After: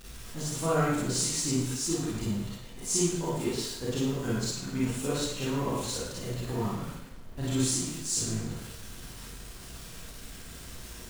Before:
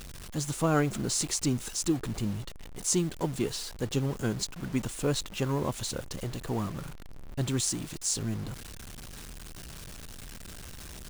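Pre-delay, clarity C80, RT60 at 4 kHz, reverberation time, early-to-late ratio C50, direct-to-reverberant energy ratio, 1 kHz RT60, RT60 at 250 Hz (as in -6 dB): 31 ms, 2.5 dB, 0.75 s, 0.75 s, -2.5 dB, -8.5 dB, 0.75 s, 0.80 s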